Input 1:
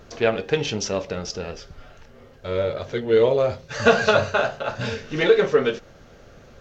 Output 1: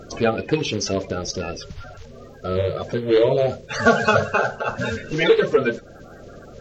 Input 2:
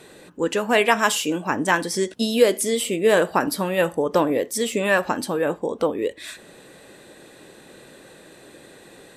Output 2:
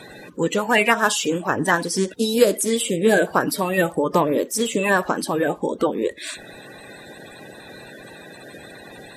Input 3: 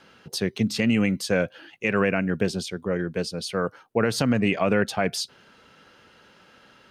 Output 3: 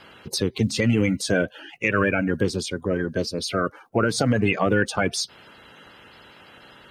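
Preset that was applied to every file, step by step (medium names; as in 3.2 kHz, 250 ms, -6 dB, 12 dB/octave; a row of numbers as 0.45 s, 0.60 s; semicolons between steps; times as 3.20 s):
coarse spectral quantiser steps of 30 dB; in parallel at +1 dB: compression, threshold -33 dBFS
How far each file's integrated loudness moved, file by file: +1.0 LU, +1.0 LU, +1.5 LU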